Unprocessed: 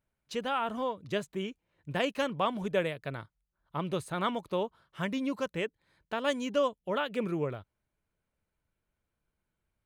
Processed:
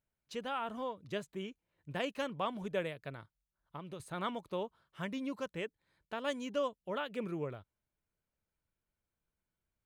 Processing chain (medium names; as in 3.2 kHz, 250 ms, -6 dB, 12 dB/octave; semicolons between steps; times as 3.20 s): 3.09–4.00 s: compression 6:1, threshold -36 dBFS, peak gain reduction 8.5 dB; trim -6.5 dB